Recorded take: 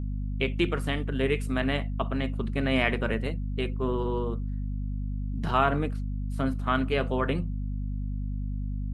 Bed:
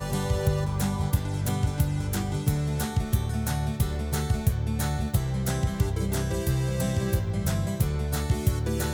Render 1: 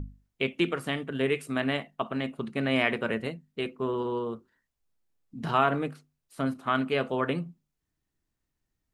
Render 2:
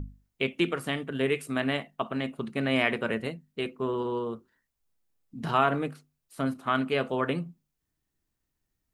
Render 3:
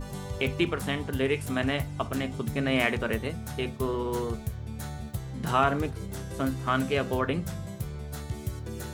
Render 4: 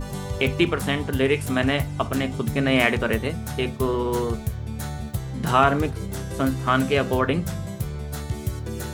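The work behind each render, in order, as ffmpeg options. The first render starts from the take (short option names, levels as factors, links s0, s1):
-af "bandreject=f=50:t=h:w=6,bandreject=f=100:t=h:w=6,bandreject=f=150:t=h:w=6,bandreject=f=200:t=h:w=6,bandreject=f=250:t=h:w=6"
-af "highshelf=f=10000:g=5.5"
-filter_complex "[1:a]volume=0.335[s0];[0:a][s0]amix=inputs=2:normalize=0"
-af "volume=2"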